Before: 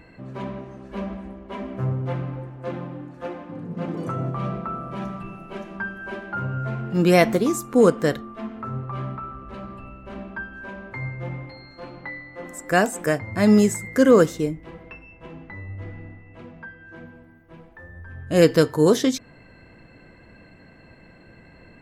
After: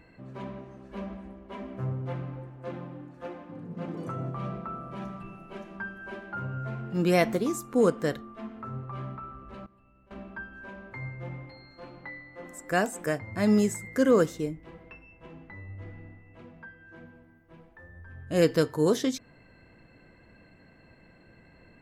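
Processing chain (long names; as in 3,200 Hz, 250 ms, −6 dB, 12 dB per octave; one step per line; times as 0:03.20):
0:09.64–0:10.11: output level in coarse steps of 18 dB
level −7 dB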